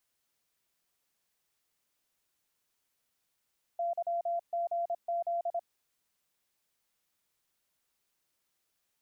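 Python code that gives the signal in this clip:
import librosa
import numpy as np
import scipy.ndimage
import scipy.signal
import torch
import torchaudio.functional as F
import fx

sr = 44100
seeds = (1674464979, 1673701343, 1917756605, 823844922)

y = fx.morse(sr, text='YGZ', wpm=26, hz=686.0, level_db=-29.0)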